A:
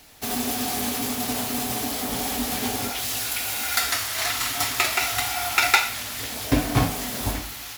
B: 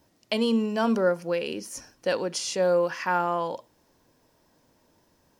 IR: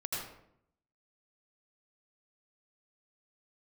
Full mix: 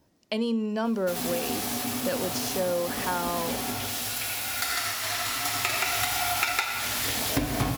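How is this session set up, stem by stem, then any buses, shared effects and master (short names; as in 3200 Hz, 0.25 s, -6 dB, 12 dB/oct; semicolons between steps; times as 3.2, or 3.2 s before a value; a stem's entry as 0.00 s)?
+2.5 dB, 0.85 s, send -10.5 dB, auto duck -15 dB, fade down 1.55 s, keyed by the second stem
-3.5 dB, 0.00 s, no send, low shelf 410 Hz +5 dB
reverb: on, RT60 0.70 s, pre-delay 75 ms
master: notches 60/120 Hz; compressor 10:1, threshold -23 dBFS, peak gain reduction 15.5 dB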